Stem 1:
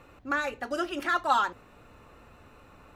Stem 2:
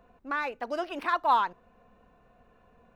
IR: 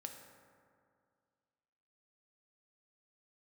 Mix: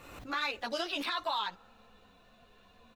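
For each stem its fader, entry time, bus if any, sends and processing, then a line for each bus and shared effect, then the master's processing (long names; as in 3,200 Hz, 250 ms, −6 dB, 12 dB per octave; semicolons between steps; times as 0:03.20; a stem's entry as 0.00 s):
−13.0 dB, 0.00 s, send −16.5 dB, background raised ahead of every attack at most 55 dB per second; automatic ducking −22 dB, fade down 1.35 s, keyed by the second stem
+1.0 dB, 15 ms, no send, parametric band 3,800 Hz +14 dB 0.82 octaves; downward compressor 3 to 1, threshold −28 dBFS, peak gain reduction 8.5 dB; string-ensemble chorus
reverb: on, RT60 2.2 s, pre-delay 3 ms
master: high-shelf EQ 3,000 Hz +11 dB; brickwall limiter −23.5 dBFS, peak gain reduction 7 dB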